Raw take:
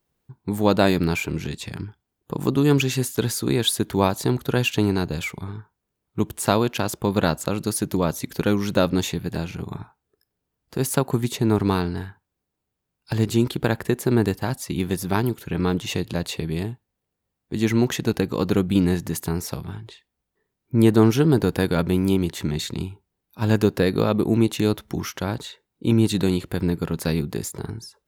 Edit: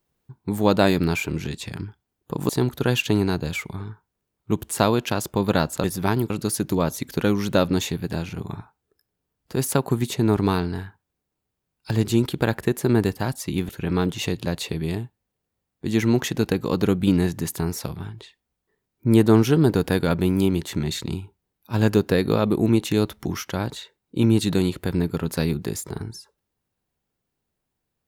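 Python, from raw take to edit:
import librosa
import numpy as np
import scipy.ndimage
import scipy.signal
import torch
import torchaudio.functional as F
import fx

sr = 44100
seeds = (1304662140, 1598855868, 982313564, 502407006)

y = fx.edit(x, sr, fx.cut(start_s=2.49, length_s=1.68),
    fx.move(start_s=14.91, length_s=0.46, to_s=7.52), tone=tone)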